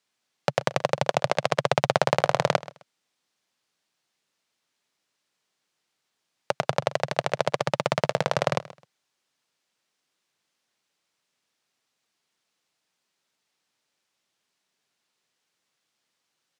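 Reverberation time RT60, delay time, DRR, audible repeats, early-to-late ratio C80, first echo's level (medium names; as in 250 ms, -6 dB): no reverb, 130 ms, no reverb, 2, no reverb, -18.0 dB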